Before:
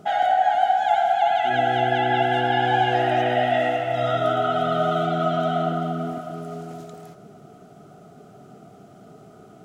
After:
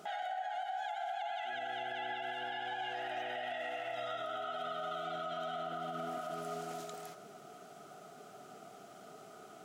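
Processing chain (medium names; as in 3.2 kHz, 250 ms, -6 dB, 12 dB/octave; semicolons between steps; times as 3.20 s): high-pass 1.2 kHz 6 dB/octave; compression 6:1, threshold -36 dBFS, peak gain reduction 15.5 dB; peak limiter -33.5 dBFS, peak gain reduction 7.5 dB; trim +2 dB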